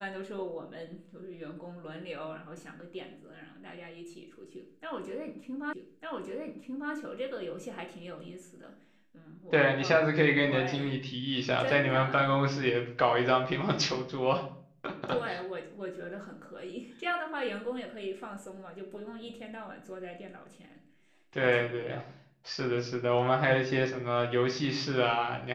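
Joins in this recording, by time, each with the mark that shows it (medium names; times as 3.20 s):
5.73 s: repeat of the last 1.2 s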